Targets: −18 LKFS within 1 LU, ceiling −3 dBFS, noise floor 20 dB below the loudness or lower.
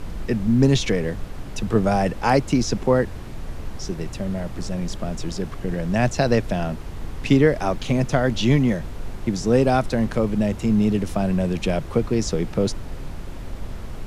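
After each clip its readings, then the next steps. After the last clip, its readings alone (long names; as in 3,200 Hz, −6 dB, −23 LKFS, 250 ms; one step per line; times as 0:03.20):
background noise floor −34 dBFS; target noise floor −42 dBFS; integrated loudness −22.0 LKFS; sample peak −4.5 dBFS; target loudness −18.0 LKFS
→ noise reduction from a noise print 8 dB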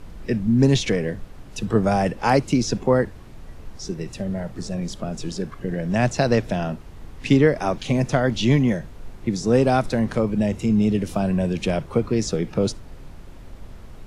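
background noise floor −41 dBFS; target noise floor −42 dBFS
→ noise reduction from a noise print 6 dB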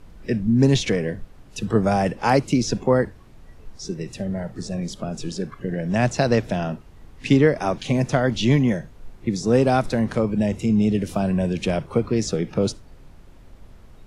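background noise floor −46 dBFS; integrated loudness −22.0 LKFS; sample peak −4.5 dBFS; target loudness −18.0 LKFS
→ level +4 dB
brickwall limiter −3 dBFS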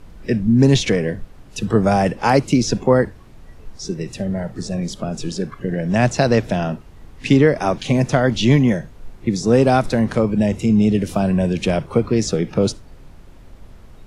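integrated loudness −18.5 LKFS; sample peak −3.0 dBFS; background noise floor −42 dBFS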